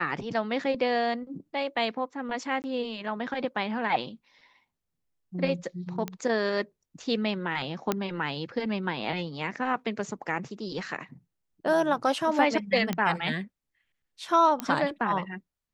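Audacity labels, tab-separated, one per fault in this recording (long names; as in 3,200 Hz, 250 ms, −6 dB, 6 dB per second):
2.620000	2.640000	drop-out 19 ms
6.080000	6.080000	click −18 dBFS
7.920000	7.920000	click −11 dBFS
12.930000	12.930000	click −14 dBFS
14.600000	14.600000	click −14 dBFS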